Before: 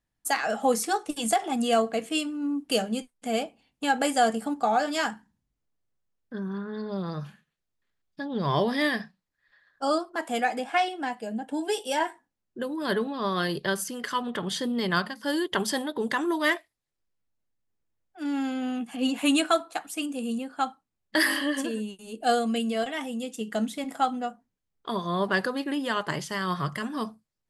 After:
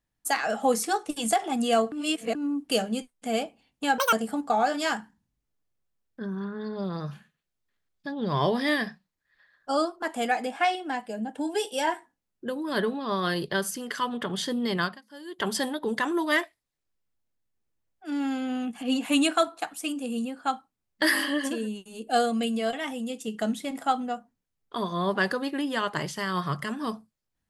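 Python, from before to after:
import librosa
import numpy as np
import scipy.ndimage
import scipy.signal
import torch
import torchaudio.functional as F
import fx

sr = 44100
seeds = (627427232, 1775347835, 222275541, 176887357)

y = fx.edit(x, sr, fx.reverse_span(start_s=1.92, length_s=0.43),
    fx.speed_span(start_s=3.98, length_s=0.28, speed=1.9),
    fx.fade_down_up(start_s=14.89, length_s=0.75, db=-17.0, fade_s=0.26), tone=tone)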